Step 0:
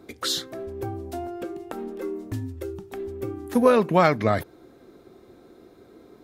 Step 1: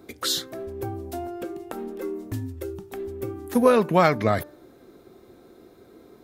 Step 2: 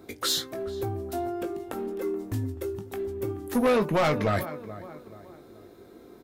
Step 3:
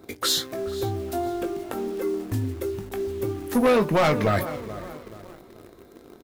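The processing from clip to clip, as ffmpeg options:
ffmpeg -i in.wav -af "highshelf=frequency=11000:gain=8.5,bandreject=frequency=296.4:width_type=h:width=4,bandreject=frequency=592.8:width_type=h:width=4,bandreject=frequency=889.2:width_type=h:width=4,bandreject=frequency=1185.6:width_type=h:width=4,bandreject=frequency=1482:width_type=h:width=4,bandreject=frequency=1778.4:width_type=h:width=4" out.wav
ffmpeg -i in.wav -filter_complex "[0:a]asplit=2[link_01][link_02];[link_02]adelay=20,volume=-8.5dB[link_03];[link_01][link_03]amix=inputs=2:normalize=0,asplit=2[link_04][link_05];[link_05]adelay=429,lowpass=frequency=2400:poles=1,volume=-19dB,asplit=2[link_06][link_07];[link_07]adelay=429,lowpass=frequency=2400:poles=1,volume=0.42,asplit=2[link_08][link_09];[link_09]adelay=429,lowpass=frequency=2400:poles=1,volume=0.42[link_10];[link_04][link_06][link_08][link_10]amix=inputs=4:normalize=0,asoftclip=type=tanh:threshold=-18.5dB" out.wav
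ffmpeg -i in.wav -filter_complex "[0:a]asplit=2[link_01][link_02];[link_02]acrusher=bits=6:mix=0:aa=0.000001,volume=-6.5dB[link_03];[link_01][link_03]amix=inputs=2:normalize=0,asplit=4[link_04][link_05][link_06][link_07];[link_05]adelay=488,afreqshift=-58,volume=-20dB[link_08];[link_06]adelay=976,afreqshift=-116,volume=-29.9dB[link_09];[link_07]adelay=1464,afreqshift=-174,volume=-39.8dB[link_10];[link_04][link_08][link_09][link_10]amix=inputs=4:normalize=0" out.wav

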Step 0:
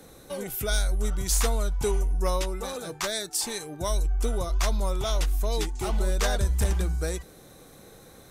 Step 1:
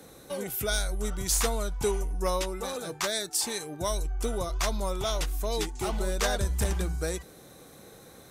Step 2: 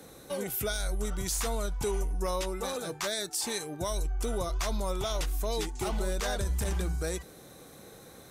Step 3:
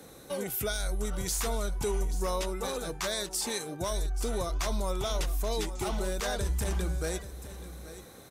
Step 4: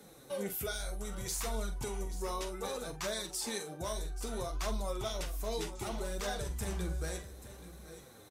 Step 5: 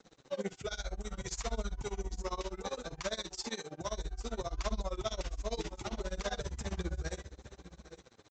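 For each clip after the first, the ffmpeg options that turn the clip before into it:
ffmpeg -i in.wav -af "highpass=frequency=81:poles=1" out.wav
ffmpeg -i in.wav -af "alimiter=limit=-22dB:level=0:latency=1:release=37" out.wav
ffmpeg -i in.wav -af "aecho=1:1:833:0.211" out.wav
ffmpeg -i in.wav -filter_complex "[0:a]flanger=delay=4.6:depth=9.4:regen=28:speed=0.64:shape=triangular,asplit=2[link_01][link_02];[link_02]adelay=45,volume=-10dB[link_03];[link_01][link_03]amix=inputs=2:normalize=0,volume=-2dB" out.wav
ffmpeg -i in.wav -af "aresample=16000,aeval=exprs='sgn(val(0))*max(abs(val(0))-0.00112,0)':channel_layout=same,aresample=44100,tremolo=f=15:d=0.95,volume=4dB" out.wav

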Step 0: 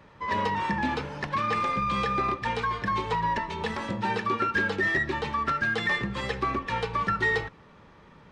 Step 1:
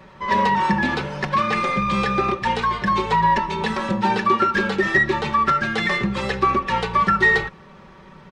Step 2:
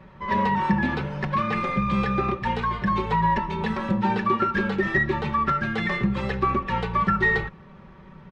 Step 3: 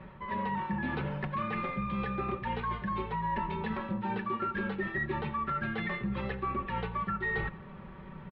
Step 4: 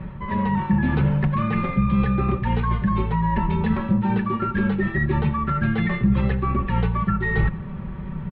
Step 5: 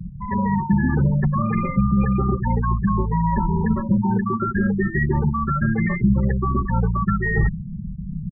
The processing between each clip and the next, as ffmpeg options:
ffmpeg -i in.wav -af "aecho=1:1:5.3:0.59,volume=6.5dB" out.wav
ffmpeg -i in.wav -af "bass=frequency=250:gain=7,treble=frequency=4000:gain=-10,volume=-5dB" out.wav
ffmpeg -i in.wav -filter_complex "[0:a]lowpass=frequency=3700:width=0.5412,lowpass=frequency=3700:width=1.3066,areverse,acompressor=threshold=-31dB:ratio=6,areverse,asplit=2[link_01][link_02];[link_02]adelay=87.46,volume=-20dB,highshelf=frequency=4000:gain=-1.97[link_03];[link_01][link_03]amix=inputs=2:normalize=0" out.wav
ffmpeg -i in.wav -af "bass=frequency=250:gain=12,treble=frequency=4000:gain=-3,volume=6.5dB" out.wav
ffmpeg -i in.wav -af "afftfilt=real='re*gte(hypot(re,im),0.1)':imag='im*gte(hypot(re,im),0.1)':win_size=1024:overlap=0.75,volume=1.5dB" out.wav

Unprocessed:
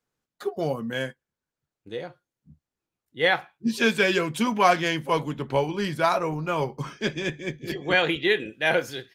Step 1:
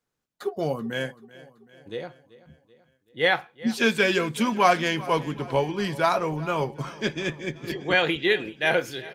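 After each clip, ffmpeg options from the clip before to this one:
ffmpeg -i in.wav -af "aecho=1:1:383|766|1149|1532|1915:0.106|0.0593|0.0332|0.0186|0.0104" out.wav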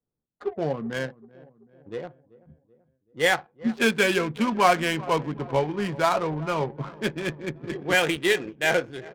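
ffmpeg -i in.wav -af "adynamicsmooth=sensitivity=4:basefreq=590" out.wav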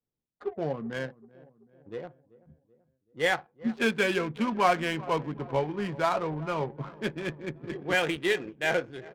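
ffmpeg -i in.wav -af "highshelf=frequency=5500:gain=-7.5,volume=-4dB" out.wav

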